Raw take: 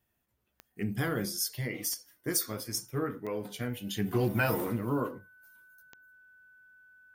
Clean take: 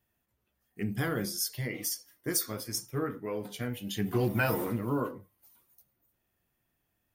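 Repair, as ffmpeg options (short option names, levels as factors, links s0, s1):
-af "adeclick=t=4,bandreject=f=1500:w=30,asetnsamples=n=441:p=0,asendcmd='5.19 volume volume 3.5dB',volume=1"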